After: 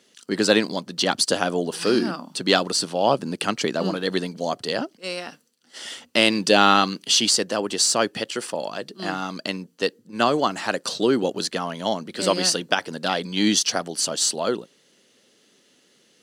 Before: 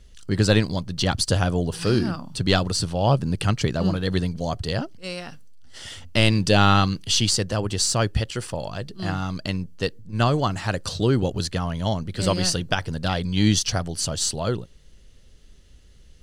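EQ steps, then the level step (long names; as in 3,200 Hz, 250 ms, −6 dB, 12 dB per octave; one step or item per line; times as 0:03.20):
high-pass filter 230 Hz 24 dB per octave
+3.0 dB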